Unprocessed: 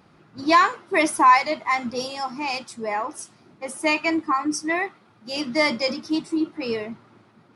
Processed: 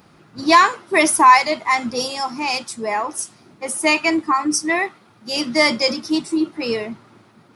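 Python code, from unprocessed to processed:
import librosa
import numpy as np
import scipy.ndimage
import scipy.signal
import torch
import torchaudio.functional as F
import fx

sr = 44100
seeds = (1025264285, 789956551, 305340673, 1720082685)

y = fx.high_shelf(x, sr, hz=6300.0, db=10.0)
y = F.gain(torch.from_numpy(y), 4.0).numpy()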